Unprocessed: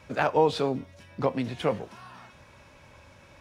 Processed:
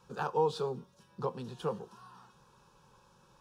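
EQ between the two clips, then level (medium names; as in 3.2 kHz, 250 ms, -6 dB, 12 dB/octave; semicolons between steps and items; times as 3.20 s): static phaser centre 420 Hz, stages 8; -5.5 dB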